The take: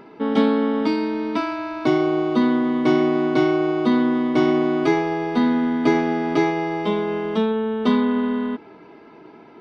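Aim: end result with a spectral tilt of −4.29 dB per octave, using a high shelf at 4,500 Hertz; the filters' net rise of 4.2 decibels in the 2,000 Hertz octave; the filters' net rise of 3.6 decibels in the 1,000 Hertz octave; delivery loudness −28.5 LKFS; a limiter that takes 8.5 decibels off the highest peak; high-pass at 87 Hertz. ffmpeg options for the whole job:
ffmpeg -i in.wav -af "highpass=87,equalizer=frequency=1000:width_type=o:gain=3.5,equalizer=frequency=2000:width_type=o:gain=3.5,highshelf=frequency=4500:gain=3.5,volume=-6.5dB,alimiter=limit=-19.5dB:level=0:latency=1" out.wav

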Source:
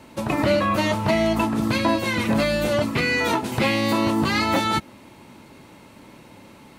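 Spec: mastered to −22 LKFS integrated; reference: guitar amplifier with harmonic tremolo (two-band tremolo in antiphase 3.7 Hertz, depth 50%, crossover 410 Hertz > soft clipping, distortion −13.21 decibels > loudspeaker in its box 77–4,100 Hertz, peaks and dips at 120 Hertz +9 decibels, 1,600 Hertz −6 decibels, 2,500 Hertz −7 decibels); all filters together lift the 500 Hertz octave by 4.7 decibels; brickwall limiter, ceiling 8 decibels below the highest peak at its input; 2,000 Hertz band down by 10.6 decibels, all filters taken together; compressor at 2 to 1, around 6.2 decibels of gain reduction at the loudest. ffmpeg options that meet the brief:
ffmpeg -i in.wav -filter_complex "[0:a]equalizer=frequency=500:width_type=o:gain=6.5,equalizer=frequency=2000:width_type=o:gain=-7.5,acompressor=threshold=-24dB:ratio=2,alimiter=limit=-19.5dB:level=0:latency=1,acrossover=split=410[link_01][link_02];[link_01]aeval=exprs='val(0)*(1-0.5/2+0.5/2*cos(2*PI*3.7*n/s))':channel_layout=same[link_03];[link_02]aeval=exprs='val(0)*(1-0.5/2-0.5/2*cos(2*PI*3.7*n/s))':channel_layout=same[link_04];[link_03][link_04]amix=inputs=2:normalize=0,asoftclip=threshold=-29dB,highpass=77,equalizer=frequency=120:width_type=q:width=4:gain=9,equalizer=frequency=1600:width_type=q:width=4:gain=-6,equalizer=frequency=2500:width_type=q:width=4:gain=-7,lowpass=frequency=4100:width=0.5412,lowpass=frequency=4100:width=1.3066,volume=12dB" out.wav

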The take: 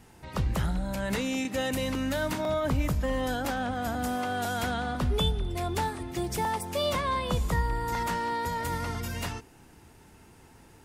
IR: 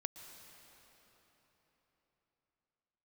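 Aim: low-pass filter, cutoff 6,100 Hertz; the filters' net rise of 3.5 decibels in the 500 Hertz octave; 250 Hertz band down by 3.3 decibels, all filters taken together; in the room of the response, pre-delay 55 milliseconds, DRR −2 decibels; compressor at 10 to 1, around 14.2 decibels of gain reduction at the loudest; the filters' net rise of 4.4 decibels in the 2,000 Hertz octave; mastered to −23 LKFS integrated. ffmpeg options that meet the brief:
-filter_complex "[0:a]lowpass=6100,equalizer=frequency=250:width_type=o:gain=-5.5,equalizer=frequency=500:width_type=o:gain=5,equalizer=frequency=2000:width_type=o:gain=5.5,acompressor=threshold=-37dB:ratio=10,asplit=2[link_01][link_02];[1:a]atrim=start_sample=2205,adelay=55[link_03];[link_02][link_03]afir=irnorm=-1:irlink=0,volume=4dB[link_04];[link_01][link_04]amix=inputs=2:normalize=0,volume=13.5dB"

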